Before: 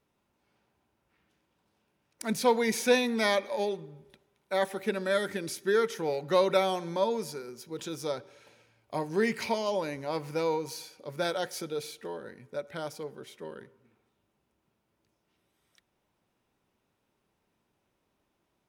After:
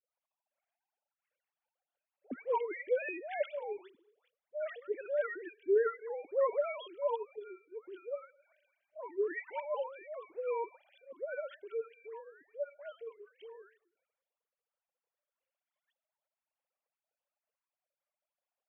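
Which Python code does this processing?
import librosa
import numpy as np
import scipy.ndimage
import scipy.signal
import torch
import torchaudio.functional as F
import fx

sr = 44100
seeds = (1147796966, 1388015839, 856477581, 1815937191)

y = fx.sine_speech(x, sr)
y = fx.dispersion(y, sr, late='highs', ms=144.0, hz=1100.0)
y = y * librosa.db_to_amplitude(-7.0)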